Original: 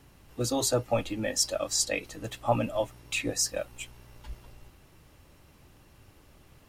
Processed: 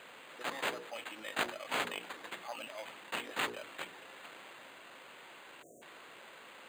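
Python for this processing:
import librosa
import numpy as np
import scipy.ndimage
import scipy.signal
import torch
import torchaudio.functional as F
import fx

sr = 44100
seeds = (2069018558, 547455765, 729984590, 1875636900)

y = fx.tracing_dist(x, sr, depth_ms=0.33)
y = np.diff(y, prepend=0.0)
y = np.repeat(y[::8], 8)[:len(y)]
y = scipy.signal.sosfilt(scipy.signal.butter(2, 250.0, 'highpass', fs=sr, output='sos'), y)
y = fx.high_shelf(y, sr, hz=8200.0, db=-12.0)
y = fx.hum_notches(y, sr, base_hz=60, count=8)
y = fx.spec_erase(y, sr, start_s=5.62, length_s=0.2, low_hz=750.0, high_hz=5700.0)
y = fx.env_flatten(y, sr, amount_pct=50)
y = F.gain(torch.from_numpy(y), -8.5).numpy()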